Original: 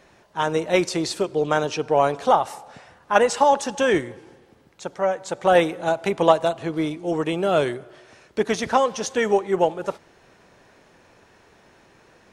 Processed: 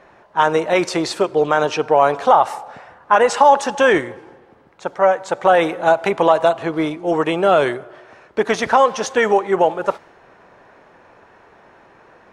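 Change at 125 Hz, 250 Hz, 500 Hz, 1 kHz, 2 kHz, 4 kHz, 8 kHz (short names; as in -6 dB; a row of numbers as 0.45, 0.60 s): +0.5, +3.0, +4.5, +6.5, +6.5, +3.0, +1.0 dB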